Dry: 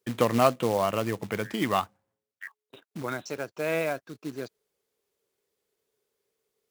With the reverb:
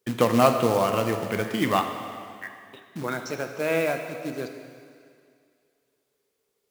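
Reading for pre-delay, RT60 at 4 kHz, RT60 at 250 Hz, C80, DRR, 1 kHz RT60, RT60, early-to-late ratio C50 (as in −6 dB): 10 ms, 2.2 s, 2.2 s, 8.0 dB, 5.5 dB, 2.3 s, 2.2 s, 7.0 dB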